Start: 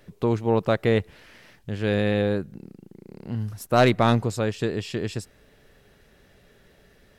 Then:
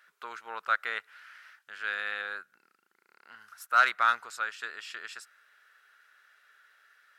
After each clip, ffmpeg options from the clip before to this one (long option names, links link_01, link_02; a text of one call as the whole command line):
ffmpeg -i in.wav -af "highpass=frequency=1400:width_type=q:width=6.5,volume=-7.5dB" out.wav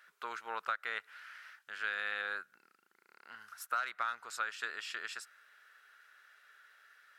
ffmpeg -i in.wav -af "acompressor=threshold=-31dB:ratio=20" out.wav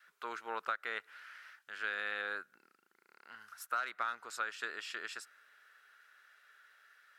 ffmpeg -i in.wav -af "adynamicequalizer=threshold=0.00112:dfrequency=310:dqfactor=0.81:tfrequency=310:tqfactor=0.81:attack=5:release=100:ratio=0.375:range=3.5:mode=boostabove:tftype=bell,volume=-1.5dB" out.wav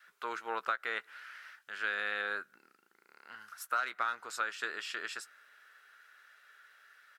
ffmpeg -i in.wav -filter_complex "[0:a]asplit=2[link_01][link_02];[link_02]adelay=15,volume=-13dB[link_03];[link_01][link_03]amix=inputs=2:normalize=0,volume=3dB" out.wav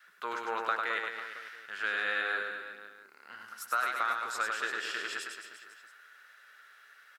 ffmpeg -i in.wav -af "aecho=1:1:100|215|347.2|499.3|674.2:0.631|0.398|0.251|0.158|0.1,volume=1.5dB" out.wav